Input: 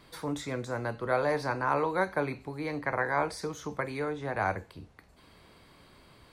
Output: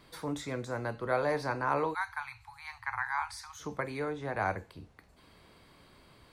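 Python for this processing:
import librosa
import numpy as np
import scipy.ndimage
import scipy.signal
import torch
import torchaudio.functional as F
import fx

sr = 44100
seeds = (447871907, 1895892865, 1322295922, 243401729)

y = fx.cheby1_bandstop(x, sr, low_hz=110.0, high_hz=820.0, order=5, at=(1.93, 3.59), fade=0.02)
y = y * 10.0 ** (-2.0 / 20.0)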